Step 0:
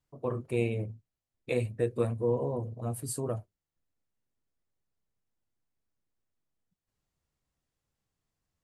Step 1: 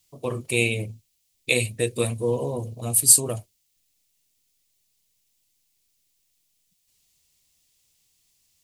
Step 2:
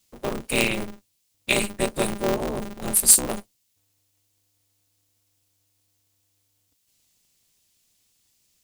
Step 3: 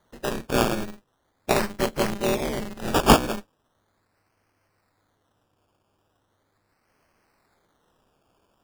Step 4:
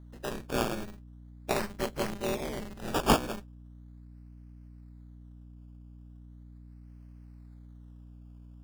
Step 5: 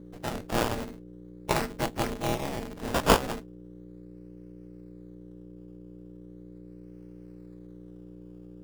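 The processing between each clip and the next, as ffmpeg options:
-af "aexciter=amount=6.1:drive=6.3:freq=2200,volume=1.58"
-af "aeval=exprs='val(0)*sgn(sin(2*PI*100*n/s))':c=same"
-af "acrusher=samples=17:mix=1:aa=0.000001:lfo=1:lforange=10.2:lforate=0.39"
-af "aeval=exprs='val(0)+0.01*(sin(2*PI*60*n/s)+sin(2*PI*2*60*n/s)/2+sin(2*PI*3*60*n/s)/3+sin(2*PI*4*60*n/s)/4+sin(2*PI*5*60*n/s)/5)':c=same,volume=0.398"
-af "aeval=exprs='val(0)*sin(2*PI*240*n/s)':c=same,volume=1.88"

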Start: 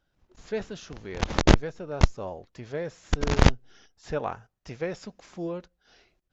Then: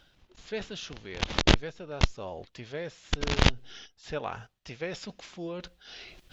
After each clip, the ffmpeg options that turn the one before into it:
-af "equalizer=f=3300:t=o:w=1.4:g=10.5,areverse,acompressor=mode=upward:threshold=0.0355:ratio=2.5,areverse,volume=0.562"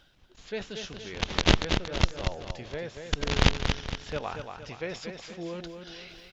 -af "aecho=1:1:233|466|699|932|1165:0.473|0.213|0.0958|0.0431|0.0194"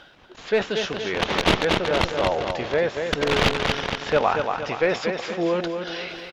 -filter_complex "[0:a]aecho=1:1:373|746|1119|1492:0.0708|0.0389|0.0214|0.0118,asplit=2[s0][s1];[s1]highpass=f=720:p=1,volume=22.4,asoftclip=type=tanh:threshold=0.891[s2];[s0][s2]amix=inputs=2:normalize=0,lowpass=f=1100:p=1,volume=0.501"

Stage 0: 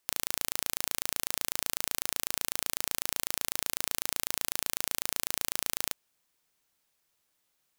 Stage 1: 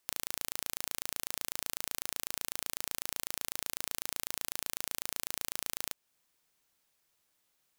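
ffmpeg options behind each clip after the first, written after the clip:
-af "acompressor=threshold=0.0126:ratio=1.5"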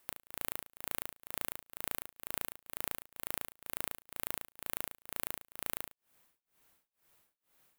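-af "equalizer=f=5500:t=o:w=1.7:g=-8.5,asoftclip=type=tanh:threshold=0.1,tremolo=f=2.1:d=0.98,volume=3.16"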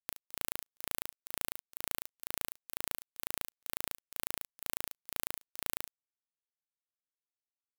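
-af "acrusher=bits=3:mix=0:aa=0.5"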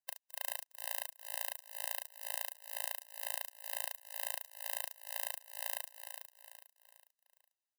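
-af "aecho=1:1:409|818|1227|1636:0.398|0.155|0.0606|0.0236,afftfilt=real='re*eq(mod(floor(b*sr/1024/520),2),1)':imag='im*eq(mod(floor(b*sr/1024/520),2),1)':win_size=1024:overlap=0.75,volume=1.33"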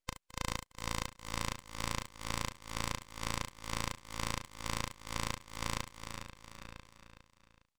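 -filter_complex "[0:a]asplit=2[s0][s1];[s1]adelay=991.3,volume=0.355,highshelf=f=4000:g=-22.3[s2];[s0][s2]amix=inputs=2:normalize=0,aresample=16000,aresample=44100,aeval=exprs='abs(val(0))':c=same,volume=2.99"

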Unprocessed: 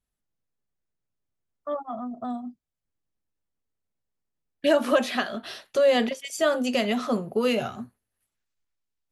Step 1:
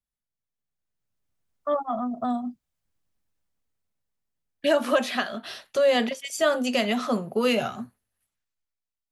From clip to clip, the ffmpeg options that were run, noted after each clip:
-filter_complex "[0:a]acrossover=split=130[s0][s1];[s0]acompressor=threshold=0.00112:ratio=6[s2];[s2][s1]amix=inputs=2:normalize=0,equalizer=f=370:t=o:w=0.98:g=-4,dynaudnorm=f=120:g=17:m=5.31,volume=0.398"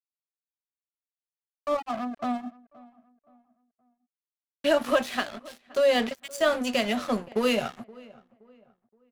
-filter_complex "[0:a]aeval=exprs='sgn(val(0))*max(abs(val(0))-0.0168,0)':c=same,asplit=2[s0][s1];[s1]adelay=522,lowpass=f=1800:p=1,volume=0.0794,asplit=2[s2][s3];[s3]adelay=522,lowpass=f=1800:p=1,volume=0.37,asplit=2[s4][s5];[s5]adelay=522,lowpass=f=1800:p=1,volume=0.37[s6];[s0][s2][s4][s6]amix=inputs=4:normalize=0"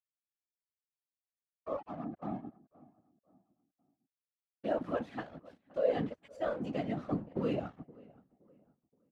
-af "asubboost=boost=3.5:cutoff=150,afftfilt=real='hypot(re,im)*cos(2*PI*random(0))':imag='hypot(re,im)*sin(2*PI*random(1))':win_size=512:overlap=0.75,bandpass=f=250:t=q:w=0.52:csg=0"

